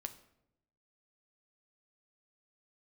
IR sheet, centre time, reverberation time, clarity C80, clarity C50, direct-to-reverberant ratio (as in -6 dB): 7 ms, 0.80 s, 16.5 dB, 13.5 dB, 7.0 dB